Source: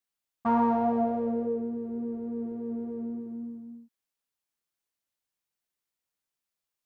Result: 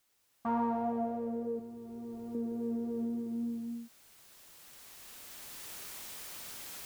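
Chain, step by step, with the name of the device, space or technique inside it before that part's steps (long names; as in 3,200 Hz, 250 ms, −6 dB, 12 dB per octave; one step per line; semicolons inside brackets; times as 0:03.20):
0:01.59–0:02.35: thirty-one-band graphic EQ 250 Hz −11 dB, 500 Hz −11 dB, 1,600 Hz −5 dB
cheap recorder with automatic gain (white noise bed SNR 35 dB; camcorder AGC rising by 8.9 dB per second)
level −7.5 dB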